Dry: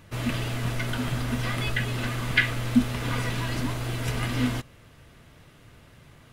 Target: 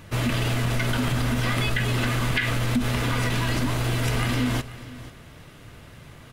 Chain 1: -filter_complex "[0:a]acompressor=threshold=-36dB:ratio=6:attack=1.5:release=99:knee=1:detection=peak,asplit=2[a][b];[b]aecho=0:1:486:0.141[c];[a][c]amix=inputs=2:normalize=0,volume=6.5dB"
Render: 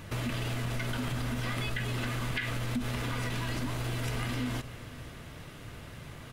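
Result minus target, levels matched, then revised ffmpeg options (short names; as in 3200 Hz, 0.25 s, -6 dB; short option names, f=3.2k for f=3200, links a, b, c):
compressor: peak gain reduction +9 dB
-filter_complex "[0:a]acompressor=threshold=-25dB:ratio=6:attack=1.5:release=99:knee=1:detection=peak,asplit=2[a][b];[b]aecho=0:1:486:0.141[c];[a][c]amix=inputs=2:normalize=0,volume=6.5dB"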